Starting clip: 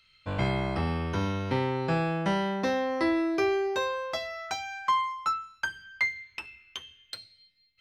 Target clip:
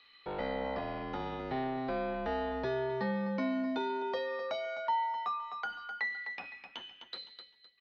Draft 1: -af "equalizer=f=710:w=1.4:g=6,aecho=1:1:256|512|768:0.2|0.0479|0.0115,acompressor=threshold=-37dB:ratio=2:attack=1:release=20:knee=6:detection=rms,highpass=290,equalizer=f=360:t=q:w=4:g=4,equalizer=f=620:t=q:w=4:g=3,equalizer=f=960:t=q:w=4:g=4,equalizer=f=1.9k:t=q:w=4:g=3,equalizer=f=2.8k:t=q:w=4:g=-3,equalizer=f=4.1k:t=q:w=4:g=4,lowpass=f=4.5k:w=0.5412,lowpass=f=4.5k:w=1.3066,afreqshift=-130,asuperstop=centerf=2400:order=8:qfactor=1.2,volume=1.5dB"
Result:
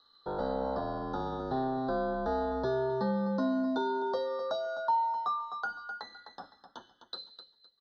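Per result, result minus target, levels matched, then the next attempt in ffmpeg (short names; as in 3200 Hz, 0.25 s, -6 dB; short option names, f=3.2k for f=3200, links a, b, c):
2000 Hz band -6.5 dB; compressor: peak gain reduction -3 dB
-af "equalizer=f=710:w=1.4:g=6,aecho=1:1:256|512|768:0.2|0.0479|0.0115,acompressor=threshold=-37dB:ratio=2:attack=1:release=20:knee=6:detection=rms,highpass=290,equalizer=f=360:t=q:w=4:g=4,equalizer=f=620:t=q:w=4:g=3,equalizer=f=960:t=q:w=4:g=4,equalizer=f=1.9k:t=q:w=4:g=3,equalizer=f=2.8k:t=q:w=4:g=-3,equalizer=f=4.1k:t=q:w=4:g=4,lowpass=f=4.5k:w=0.5412,lowpass=f=4.5k:w=1.3066,afreqshift=-130,volume=1.5dB"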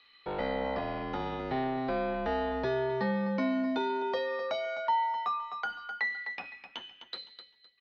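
compressor: peak gain reduction -3 dB
-af "equalizer=f=710:w=1.4:g=6,aecho=1:1:256|512|768:0.2|0.0479|0.0115,acompressor=threshold=-43.5dB:ratio=2:attack=1:release=20:knee=6:detection=rms,highpass=290,equalizer=f=360:t=q:w=4:g=4,equalizer=f=620:t=q:w=4:g=3,equalizer=f=960:t=q:w=4:g=4,equalizer=f=1.9k:t=q:w=4:g=3,equalizer=f=2.8k:t=q:w=4:g=-3,equalizer=f=4.1k:t=q:w=4:g=4,lowpass=f=4.5k:w=0.5412,lowpass=f=4.5k:w=1.3066,afreqshift=-130,volume=1.5dB"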